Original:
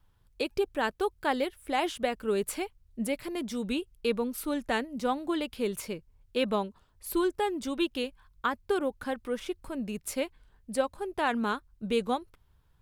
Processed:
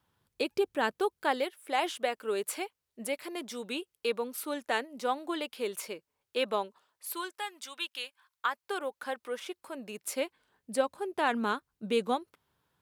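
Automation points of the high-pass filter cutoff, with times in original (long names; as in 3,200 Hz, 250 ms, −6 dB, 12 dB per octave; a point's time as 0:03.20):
0:00.93 160 Hz
0:01.46 420 Hz
0:06.65 420 Hz
0:07.49 1,300 Hz
0:07.99 1,300 Hz
0:09.04 500 Hz
0:09.59 500 Hz
0:10.80 210 Hz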